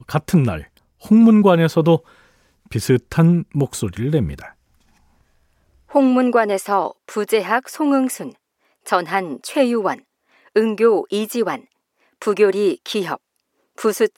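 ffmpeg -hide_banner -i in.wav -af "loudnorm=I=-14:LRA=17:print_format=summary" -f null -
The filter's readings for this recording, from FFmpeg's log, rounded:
Input Integrated:    -18.4 LUFS
Input True Peak:      -2.3 dBTP
Input LRA:             4.9 LU
Input Threshold:     -29.7 LUFS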